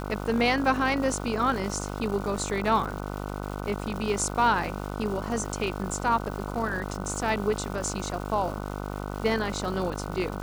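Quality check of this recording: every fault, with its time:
mains buzz 50 Hz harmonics 30 −34 dBFS
surface crackle 480 per second −36 dBFS

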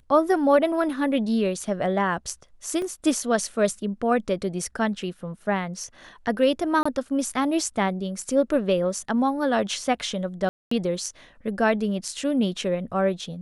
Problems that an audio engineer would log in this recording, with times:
0:02.82: drop-out 2.2 ms
0:06.83–0:06.86: drop-out 25 ms
0:10.49–0:10.71: drop-out 224 ms

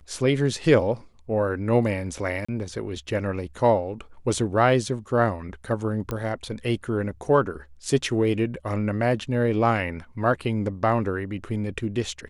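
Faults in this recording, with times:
0:02.45–0:02.48: drop-out 35 ms
0:06.11: click −16 dBFS

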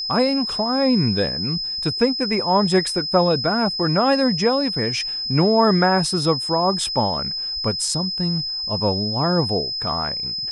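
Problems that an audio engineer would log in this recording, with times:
whistle 5,100 Hz −24 dBFS

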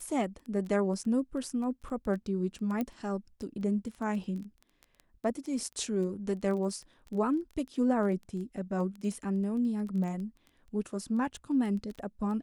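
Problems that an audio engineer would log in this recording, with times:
surface crackle 11 per second −37 dBFS
0:02.81: click −20 dBFS

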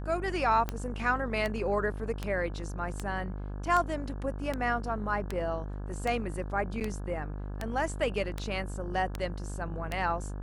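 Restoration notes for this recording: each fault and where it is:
mains buzz 50 Hz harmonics 34 −37 dBFS
scratch tick 78 rpm −17 dBFS
0:06.80–0:06.81: drop-out 8.4 ms

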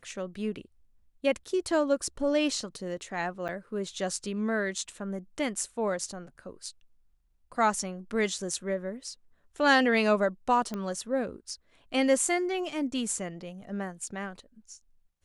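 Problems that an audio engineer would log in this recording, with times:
0:03.48–0:03.49: drop-out 7.9 ms
0:10.74: click −21 dBFS

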